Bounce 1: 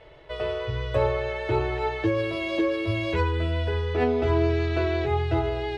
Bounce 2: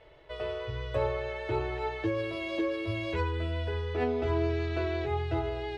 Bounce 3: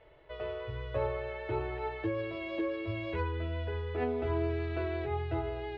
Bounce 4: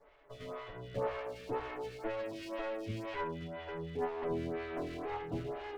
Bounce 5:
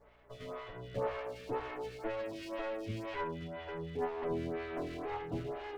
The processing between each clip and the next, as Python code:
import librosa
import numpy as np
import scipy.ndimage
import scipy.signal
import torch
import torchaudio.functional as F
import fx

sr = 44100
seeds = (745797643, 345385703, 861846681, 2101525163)

y1 = fx.peak_eq(x, sr, hz=150.0, db=-2.5, octaves=0.77)
y1 = y1 * 10.0 ** (-6.0 / 20.0)
y2 = scipy.signal.sosfilt(scipy.signal.butter(2, 3000.0, 'lowpass', fs=sr, output='sos'), y1)
y2 = y2 * 10.0 ** (-3.0 / 20.0)
y3 = fx.lower_of_two(y2, sr, delay_ms=7.0)
y3 = fx.stagger_phaser(y3, sr, hz=2.0)
y4 = fx.add_hum(y3, sr, base_hz=60, snr_db=31)